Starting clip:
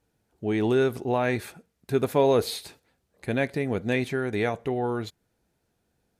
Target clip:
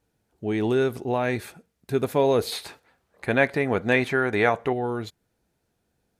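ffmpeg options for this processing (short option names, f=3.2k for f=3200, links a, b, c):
-filter_complex "[0:a]asettb=1/sr,asplit=3[a][b][c];[a]atrim=end=2.524[d];[b]atrim=start=2.52:end=4.73,asetpts=PTS-STARTPTS,afade=t=in:d=0.004:c=qsin,afade=t=out:st=2.206:d=0.004:c=qsin,equalizer=f=1.2k:w=0.53:g=10.5[e];[c]atrim=start=4.726[f];[d][e]acrossfade=d=0.004:c1=hsin:c2=qsin[g];[g][f]acrossfade=d=0.004:c1=qsin:c2=hsin"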